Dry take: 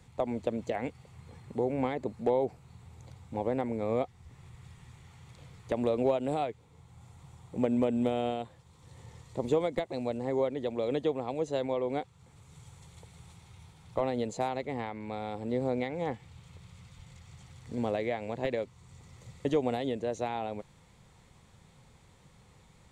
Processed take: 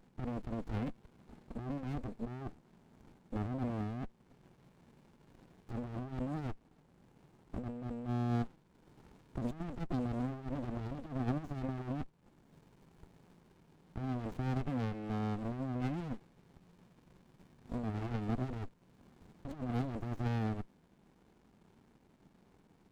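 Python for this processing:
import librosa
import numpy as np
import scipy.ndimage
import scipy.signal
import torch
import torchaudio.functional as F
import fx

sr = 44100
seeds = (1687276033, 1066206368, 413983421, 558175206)

y = scipy.signal.sosfilt(scipy.signal.butter(4, 210.0, 'highpass', fs=sr, output='sos'), x)
y = fx.peak_eq(y, sr, hz=300.0, db=6.0, octaves=2.1)
y = fx.over_compress(y, sr, threshold_db=-31.0, ratio=-1.0)
y = fx.running_max(y, sr, window=65)
y = F.gain(torch.from_numpy(y), -5.0).numpy()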